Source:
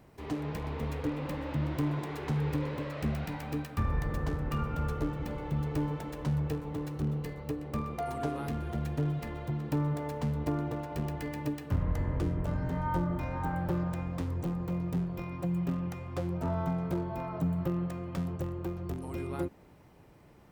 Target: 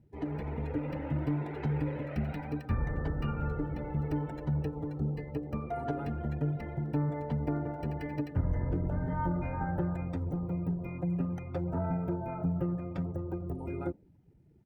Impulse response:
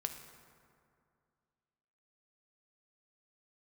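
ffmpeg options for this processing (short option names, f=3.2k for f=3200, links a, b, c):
-af "afftdn=nr=20:nf=-48,atempo=1.4,asuperstop=centerf=1100:order=4:qfactor=5.6"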